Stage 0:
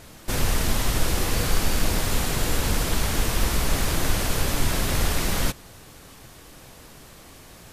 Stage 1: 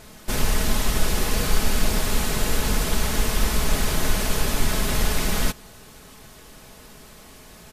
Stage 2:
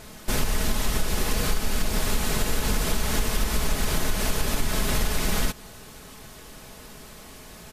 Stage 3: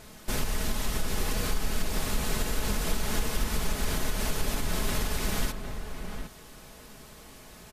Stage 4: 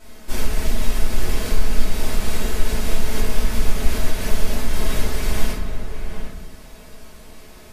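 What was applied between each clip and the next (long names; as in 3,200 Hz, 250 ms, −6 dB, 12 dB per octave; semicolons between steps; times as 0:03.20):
comb filter 4.7 ms, depth 41%
downward compressor, threshold −20 dBFS, peak gain reduction 8.5 dB; level +1.5 dB
slap from a distant wall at 130 metres, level −7 dB; level −5 dB
rectangular room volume 190 cubic metres, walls mixed, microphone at 2.8 metres; level −5.5 dB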